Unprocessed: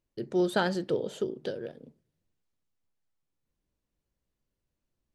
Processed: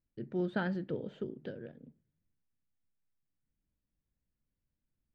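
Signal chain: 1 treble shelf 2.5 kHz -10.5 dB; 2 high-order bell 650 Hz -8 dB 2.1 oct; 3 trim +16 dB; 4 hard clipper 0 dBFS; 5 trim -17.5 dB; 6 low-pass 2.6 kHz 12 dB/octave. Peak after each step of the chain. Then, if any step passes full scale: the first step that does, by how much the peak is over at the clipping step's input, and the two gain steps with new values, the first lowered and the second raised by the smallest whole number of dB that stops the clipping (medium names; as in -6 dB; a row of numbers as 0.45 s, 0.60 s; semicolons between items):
-14.5 dBFS, -20.0 dBFS, -4.0 dBFS, -4.0 dBFS, -21.5 dBFS, -22.0 dBFS; nothing clips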